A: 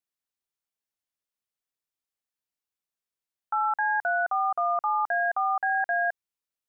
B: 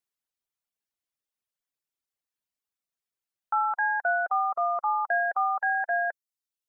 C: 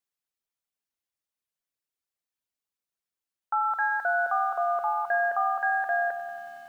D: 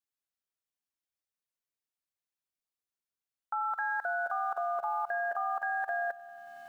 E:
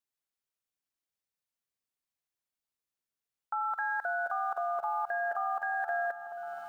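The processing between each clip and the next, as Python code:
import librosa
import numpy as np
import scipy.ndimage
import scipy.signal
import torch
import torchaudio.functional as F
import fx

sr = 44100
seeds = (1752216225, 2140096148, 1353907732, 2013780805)

y1 = fx.dereverb_blind(x, sr, rt60_s=1.2)
y1 = y1 * librosa.db_to_amplitude(1.5)
y2 = fx.echo_feedback(y1, sr, ms=128, feedback_pct=42, wet_db=-21)
y2 = fx.echo_crushed(y2, sr, ms=92, feedback_pct=80, bits=9, wet_db=-13.0)
y2 = y2 * librosa.db_to_amplitude(-1.0)
y3 = fx.level_steps(y2, sr, step_db=16)
y4 = fx.echo_opening(y3, sr, ms=581, hz=200, octaves=1, feedback_pct=70, wet_db=-6)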